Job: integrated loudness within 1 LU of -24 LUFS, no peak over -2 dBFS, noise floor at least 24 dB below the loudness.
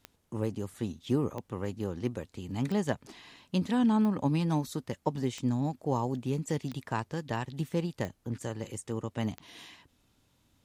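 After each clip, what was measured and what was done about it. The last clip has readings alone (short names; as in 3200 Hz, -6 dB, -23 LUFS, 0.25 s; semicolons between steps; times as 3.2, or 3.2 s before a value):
clicks 8; loudness -32.5 LUFS; peak -13.5 dBFS; loudness target -24.0 LUFS
-> de-click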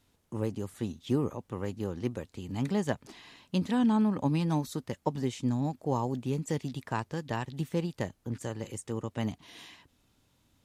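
clicks 0; loudness -32.5 LUFS; peak -13.5 dBFS; loudness target -24.0 LUFS
-> gain +8.5 dB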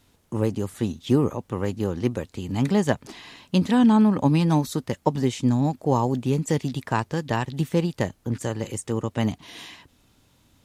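loudness -24.0 LUFS; peak -5.0 dBFS; noise floor -63 dBFS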